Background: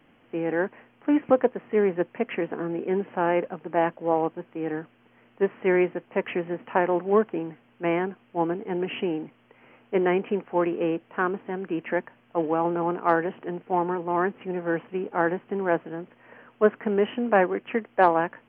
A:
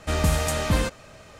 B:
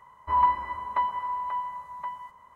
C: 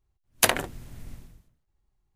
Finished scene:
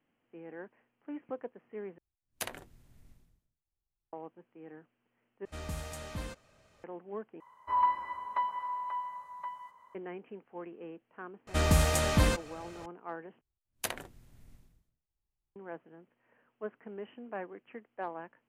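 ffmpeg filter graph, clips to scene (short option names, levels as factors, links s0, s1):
-filter_complex "[3:a]asplit=2[s0][s1];[1:a]asplit=2[s2][s3];[0:a]volume=0.1[s4];[2:a]highpass=f=360:p=1[s5];[s4]asplit=5[s6][s7][s8][s9][s10];[s6]atrim=end=1.984[s11];[s0]atrim=end=2.15,asetpts=PTS-STARTPTS,volume=0.133[s12];[s7]atrim=start=4.126:end=5.454[s13];[s2]atrim=end=1.39,asetpts=PTS-STARTPTS,volume=0.133[s14];[s8]atrim=start=6.836:end=7.404[s15];[s5]atrim=end=2.55,asetpts=PTS-STARTPTS,volume=0.562[s16];[s9]atrim=start=9.946:end=13.414[s17];[s1]atrim=end=2.15,asetpts=PTS-STARTPTS,volume=0.178[s18];[s10]atrim=start=15.556[s19];[s3]atrim=end=1.39,asetpts=PTS-STARTPTS,volume=0.708,afade=t=in:d=0.004:c=hsin,afade=t=out:st=1.386:d=0.004:c=hsin,adelay=11470[s20];[s11][s12]acrossfade=d=0.004:c1=hsin:c2=hsin[s21];[s21][s13]acrossfade=d=0.004:c1=hsin:c2=hsin[s22];[s22][s14]acrossfade=d=0.004:c1=hsin:c2=hsin[s23];[s23][s15]acrossfade=d=0.004:c1=hsin:c2=hsin[s24];[s24][s16]acrossfade=d=0.004:c1=hsin:c2=hsin[s25];[s25][s17]acrossfade=d=0.004:c1=hsin:c2=hsin[s26];[s26][s18]acrossfade=d=0.004:c1=hsin:c2=hsin[s27];[s27][s19]acrossfade=d=0.004:c1=hsin:c2=hsin[s28];[s28][s20]amix=inputs=2:normalize=0"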